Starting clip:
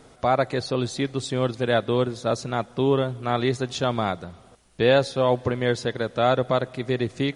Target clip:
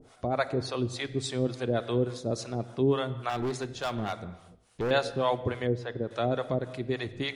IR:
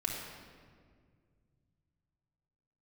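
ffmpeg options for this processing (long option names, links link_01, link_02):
-filter_complex "[0:a]acrossover=split=550[link_01][link_02];[link_01]aeval=exprs='val(0)*(1-1/2+1/2*cos(2*PI*3.5*n/s))':channel_layout=same[link_03];[link_02]aeval=exprs='val(0)*(1-1/2-1/2*cos(2*PI*3.5*n/s))':channel_layout=same[link_04];[link_03][link_04]amix=inputs=2:normalize=0,asplit=2[link_05][link_06];[1:a]atrim=start_sample=2205,afade=type=out:start_time=0.31:duration=0.01,atrim=end_sample=14112[link_07];[link_06][link_07]afir=irnorm=-1:irlink=0,volume=-13dB[link_08];[link_05][link_08]amix=inputs=2:normalize=0,asettb=1/sr,asplit=3[link_09][link_10][link_11];[link_09]atrim=end=3.294[link_12];[link_10]atrim=start=3.29:end=4.91,asetpts=PTS-STARTPTS,afade=type=in:duration=0.004:curve=qsin,afade=type=out:start_time=1.616:duration=0.004:curve=qsin,asoftclip=type=hard:threshold=-24dB[link_13];[link_11]atrim=start=4.906[link_14];[link_12][link_13]acrossfade=duration=0.004:curve1=hsin:curve2=qsin[link_15];[link_15][link_14]acrossfade=duration=0.004:curve1=qsin:curve2=hsin,asettb=1/sr,asplit=3[link_16][link_17][link_18];[link_16]atrim=end=5.674[link_19];[link_17]atrim=start=5.67:end=6.11,asetpts=PTS-STARTPTS,afade=type=in:duration=0.004:curve=qsin,afade=type=out:start_time=0.436:duration=0.004:curve=qsin,lowpass=frequency=1200:poles=1[link_20];[link_18]atrim=start=6.106[link_21];[link_19][link_20]acrossfade=duration=0.004:curve1=hsin:curve2=qsin[link_22];[link_22][link_21]acrossfade=duration=0.004:curve1=qsin:curve2=hsin,volume=-2.5dB"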